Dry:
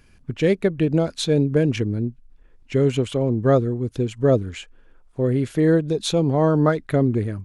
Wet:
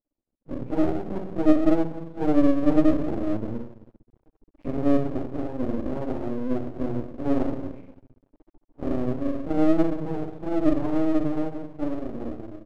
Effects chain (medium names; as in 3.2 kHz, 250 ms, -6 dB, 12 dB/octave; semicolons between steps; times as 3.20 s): fade out at the end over 1.10 s; recorder AGC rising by 17 dB/s; gate -41 dBFS, range -21 dB; bass shelf 140 Hz -9.5 dB; in parallel at +1 dB: compression 20:1, threshold -26 dBFS, peak gain reduction 14.5 dB; on the sum: cascade formant filter u; plain phase-vocoder stretch 1.7×; simulated room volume 170 m³, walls mixed, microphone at 2.1 m; half-wave rectifier; feedback delay 69 ms, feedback 24%, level -17 dB; trim -1.5 dB